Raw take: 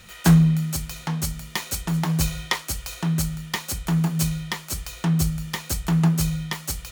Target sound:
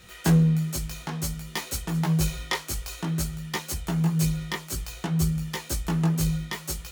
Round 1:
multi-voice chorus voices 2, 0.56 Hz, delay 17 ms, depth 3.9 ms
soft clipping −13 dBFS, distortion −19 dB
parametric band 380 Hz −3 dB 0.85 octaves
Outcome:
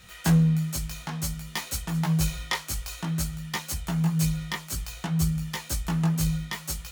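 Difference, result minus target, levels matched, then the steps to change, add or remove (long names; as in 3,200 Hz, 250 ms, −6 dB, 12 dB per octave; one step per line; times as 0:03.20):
500 Hz band −4.5 dB
change: parametric band 380 Hz +5.5 dB 0.85 octaves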